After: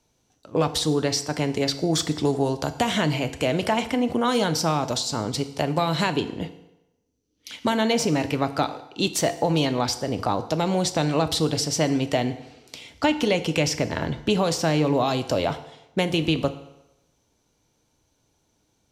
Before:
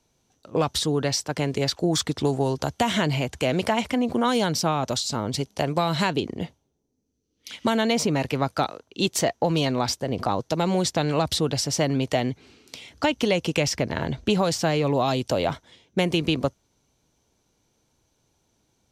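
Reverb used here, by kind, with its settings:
feedback delay network reverb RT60 0.94 s, low-frequency decay 0.8×, high-frequency decay 0.85×, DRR 9.5 dB

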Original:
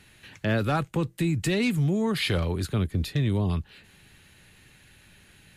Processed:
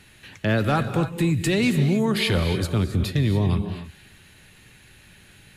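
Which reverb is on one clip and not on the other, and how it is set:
reverb whose tail is shaped and stops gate 310 ms rising, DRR 8.5 dB
level +3.5 dB

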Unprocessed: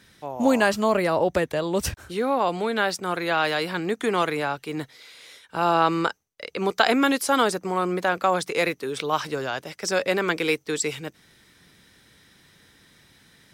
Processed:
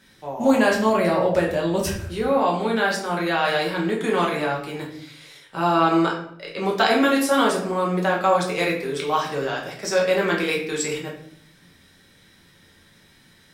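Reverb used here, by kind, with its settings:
rectangular room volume 110 cubic metres, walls mixed, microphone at 1.1 metres
level −3 dB

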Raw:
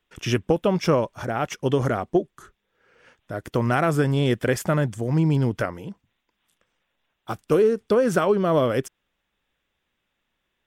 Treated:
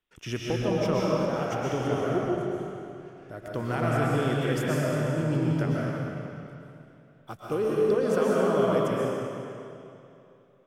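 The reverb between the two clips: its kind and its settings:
comb and all-pass reverb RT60 2.8 s, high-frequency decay 0.9×, pre-delay 90 ms, DRR −5 dB
level −10 dB

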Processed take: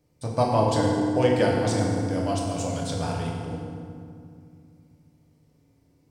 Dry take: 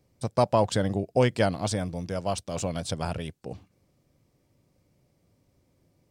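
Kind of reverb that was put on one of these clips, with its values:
feedback delay network reverb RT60 2.3 s, low-frequency decay 1.55×, high-frequency decay 0.65×, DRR −3 dB
level −3 dB

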